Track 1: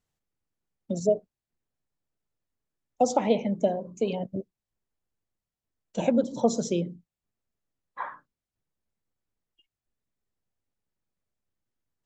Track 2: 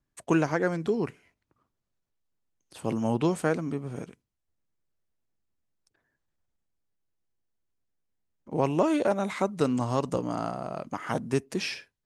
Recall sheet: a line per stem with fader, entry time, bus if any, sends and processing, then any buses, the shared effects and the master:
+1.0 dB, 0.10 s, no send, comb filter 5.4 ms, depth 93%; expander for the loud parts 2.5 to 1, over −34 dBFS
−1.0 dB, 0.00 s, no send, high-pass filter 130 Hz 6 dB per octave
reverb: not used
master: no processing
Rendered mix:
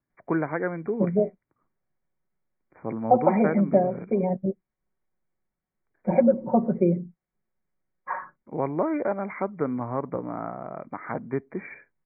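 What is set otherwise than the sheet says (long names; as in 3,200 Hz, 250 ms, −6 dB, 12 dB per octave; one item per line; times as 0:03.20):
stem 1: missing expander for the loud parts 2.5 to 1, over −34 dBFS
master: extra linear-phase brick-wall low-pass 2,400 Hz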